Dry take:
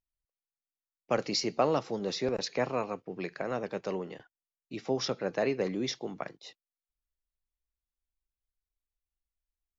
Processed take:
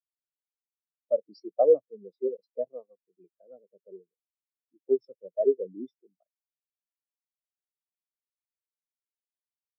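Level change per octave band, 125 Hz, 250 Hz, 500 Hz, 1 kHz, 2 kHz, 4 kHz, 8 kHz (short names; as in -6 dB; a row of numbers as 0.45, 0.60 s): under -20 dB, -6.0 dB, +4.5 dB, -5.5 dB, under -40 dB, under -25 dB, n/a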